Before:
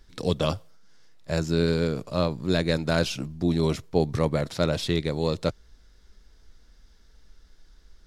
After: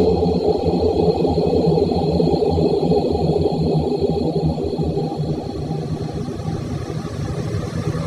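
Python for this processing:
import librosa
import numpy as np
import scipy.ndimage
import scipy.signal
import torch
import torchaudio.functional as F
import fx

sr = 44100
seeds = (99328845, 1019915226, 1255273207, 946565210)

y = fx.echo_split(x, sr, split_hz=570.0, low_ms=548, high_ms=96, feedback_pct=52, wet_db=-13)
y = fx.paulstretch(y, sr, seeds[0], factor=40.0, window_s=0.25, from_s=3.94)
y = fx.dereverb_blind(y, sr, rt60_s=1.3)
y = y * librosa.db_to_amplitude(7.5)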